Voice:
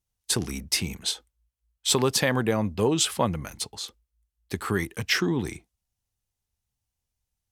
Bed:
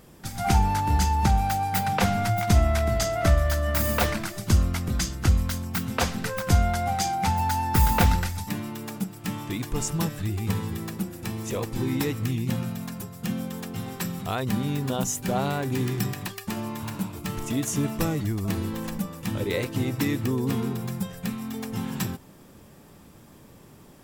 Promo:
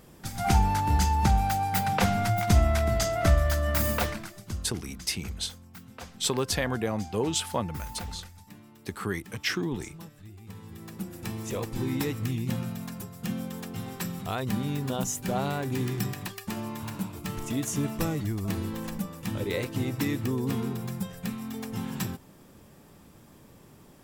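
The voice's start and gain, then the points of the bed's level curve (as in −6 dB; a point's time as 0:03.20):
4.35 s, −5.0 dB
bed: 0:03.87 −1.5 dB
0:04.73 −18.5 dB
0:10.48 −18.5 dB
0:11.15 −3 dB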